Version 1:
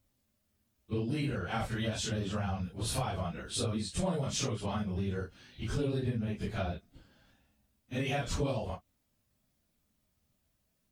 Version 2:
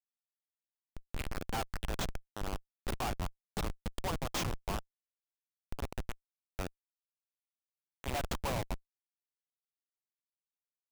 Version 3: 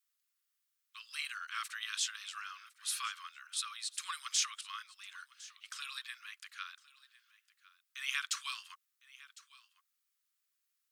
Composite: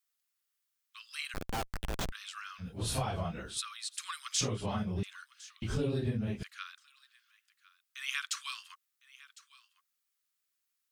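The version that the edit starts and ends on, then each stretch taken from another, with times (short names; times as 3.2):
3
1.34–2.12 from 2
2.63–3.54 from 1, crossfade 0.10 s
4.41–5.03 from 1
5.62–6.43 from 1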